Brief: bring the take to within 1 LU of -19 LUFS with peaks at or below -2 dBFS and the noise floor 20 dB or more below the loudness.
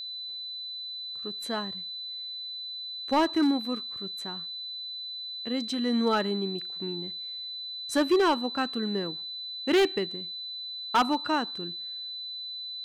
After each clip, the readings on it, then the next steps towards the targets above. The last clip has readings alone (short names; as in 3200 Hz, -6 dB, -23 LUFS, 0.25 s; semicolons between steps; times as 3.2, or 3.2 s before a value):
clipped 0.6%; flat tops at -17.5 dBFS; steady tone 4000 Hz; tone level -35 dBFS; loudness -29.5 LUFS; peak -17.5 dBFS; loudness target -19.0 LUFS
-> clip repair -17.5 dBFS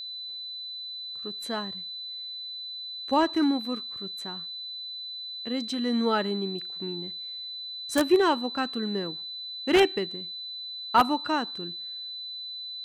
clipped 0.0%; steady tone 4000 Hz; tone level -35 dBFS
-> notch 4000 Hz, Q 30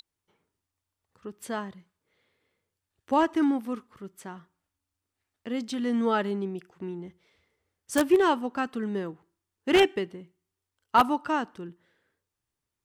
steady tone none; loudness -27.0 LUFS; peak -8.0 dBFS; loudness target -19.0 LUFS
-> gain +8 dB; limiter -2 dBFS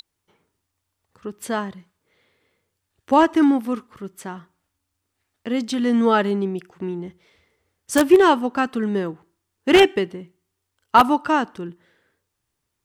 loudness -19.5 LUFS; peak -2.0 dBFS; noise floor -78 dBFS